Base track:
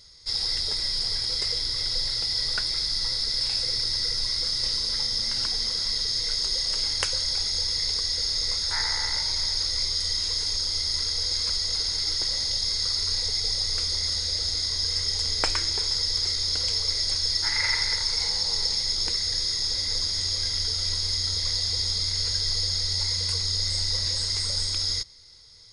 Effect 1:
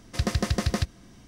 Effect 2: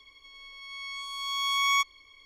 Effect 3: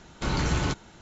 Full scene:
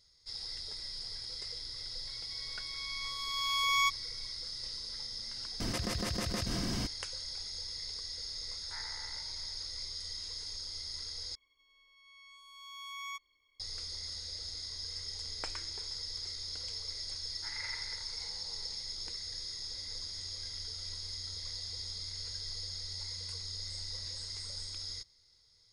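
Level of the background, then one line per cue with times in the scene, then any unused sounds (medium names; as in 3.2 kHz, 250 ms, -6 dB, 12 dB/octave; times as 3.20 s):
base track -15 dB
2.07 s: add 2 -4 dB
5.60 s: add 1 -14 dB + level flattener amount 100%
11.35 s: replace with 2 -18 dB
not used: 3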